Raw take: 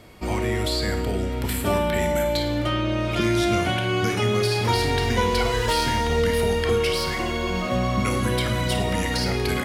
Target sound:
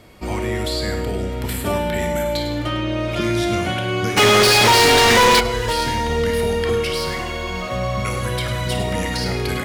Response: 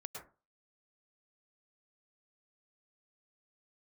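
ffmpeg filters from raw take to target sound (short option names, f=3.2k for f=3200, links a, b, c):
-filter_complex "[0:a]asettb=1/sr,asplit=3[a][b][c];[a]atrim=end=7.194[d];[b]atrim=start=7.19:end=8.67,asetpts=PTS-STARTPTS,afade=t=in:d=0.004:c=qsin,afade=t=out:st=1.476:d=0.004:c=qsin,equalizer=f=260:t=o:w=0.84:g=-9.5[e];[c]atrim=start=8.666[f];[d][e]acrossfade=d=0.004:c1=hsin:c2=qsin[g];[g][f]acrossfade=d=0.004:c1=qsin:c2=hsin[h];[1:a]atrim=start_sample=2205,afade=t=out:st=0.15:d=0.01,atrim=end_sample=7056[i];[h][i]afir=irnorm=-1:irlink=0,asplit=3[j][k][l];[j]afade=t=out:st=4.16:d=0.02[m];[k]asplit=2[n][o];[o]highpass=f=720:p=1,volume=32dB,asoftclip=type=tanh:threshold=-12dB[p];[n][p]amix=inputs=2:normalize=0,lowpass=f=7.1k:p=1,volume=-6dB,afade=t=in:st=4.16:d=0.02,afade=t=out:st=5.39:d=0.02[q];[l]afade=t=in:st=5.39:d=0.02[r];[m][q][r]amix=inputs=3:normalize=0,acontrast=64"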